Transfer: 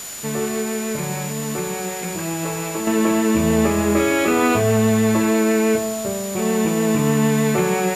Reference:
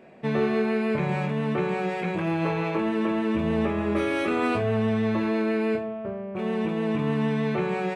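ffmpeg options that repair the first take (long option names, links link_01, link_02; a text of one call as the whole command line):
ffmpeg -i in.wav -af "bandreject=frequency=7000:width=30,afwtdn=0.02,asetnsamples=nb_out_samples=441:pad=0,asendcmd='2.87 volume volume -7.5dB',volume=0dB" out.wav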